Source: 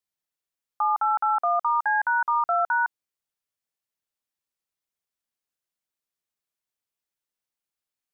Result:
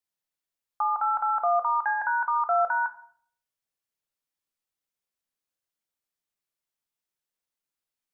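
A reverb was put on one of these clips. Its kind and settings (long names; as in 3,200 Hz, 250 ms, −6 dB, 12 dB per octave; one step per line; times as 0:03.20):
rectangular room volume 82 cubic metres, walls mixed, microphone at 0.3 metres
level −1.5 dB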